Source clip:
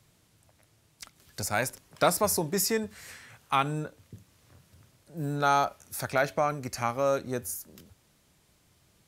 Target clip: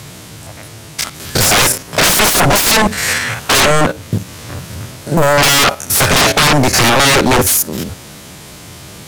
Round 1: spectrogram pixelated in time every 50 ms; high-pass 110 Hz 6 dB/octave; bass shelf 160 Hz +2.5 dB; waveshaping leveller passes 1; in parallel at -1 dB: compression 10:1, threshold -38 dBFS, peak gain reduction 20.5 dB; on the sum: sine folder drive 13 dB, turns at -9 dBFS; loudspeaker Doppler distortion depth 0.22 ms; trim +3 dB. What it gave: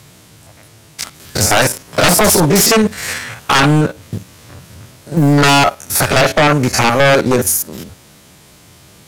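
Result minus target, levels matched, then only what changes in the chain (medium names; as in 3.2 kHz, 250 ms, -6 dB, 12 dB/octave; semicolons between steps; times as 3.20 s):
sine folder: distortion -18 dB; compression: peak gain reduction -9 dB
change: compression 10:1, threshold -48 dBFS, peak gain reduction 29.5 dB; change: sine folder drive 23 dB, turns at -9 dBFS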